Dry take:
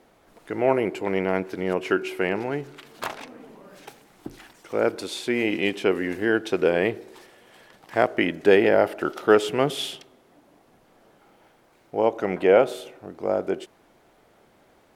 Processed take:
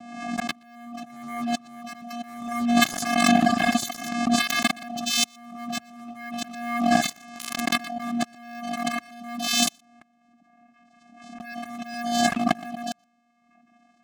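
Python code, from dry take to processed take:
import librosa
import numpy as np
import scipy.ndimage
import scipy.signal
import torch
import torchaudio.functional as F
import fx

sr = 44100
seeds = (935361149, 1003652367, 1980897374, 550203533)

p1 = fx.speed_glide(x, sr, from_pct=97, to_pct=116)
p2 = fx.peak_eq(p1, sr, hz=240.0, db=-10.0, octaves=0.53)
p3 = 10.0 ** (-26.5 / 20.0) * np.tanh(p2 / 10.0 ** (-26.5 / 20.0))
p4 = p2 + (p3 * 10.0 ** (-6.0 / 20.0))
p5 = fx.vocoder(p4, sr, bands=4, carrier='square', carrier_hz=237.0)
p6 = fx.leveller(p5, sr, passes=5)
p7 = fx.high_shelf(p6, sr, hz=4300.0, db=5.5)
p8 = fx.over_compress(p7, sr, threshold_db=-26.0, ratio=-0.5)
p9 = p8 + fx.echo_single(p8, sr, ms=120, db=-23.0, dry=0)
p10 = fx.dereverb_blind(p9, sr, rt60_s=1.2)
p11 = fx.pre_swell(p10, sr, db_per_s=51.0)
y = p11 * 10.0 ** (-1.0 / 20.0)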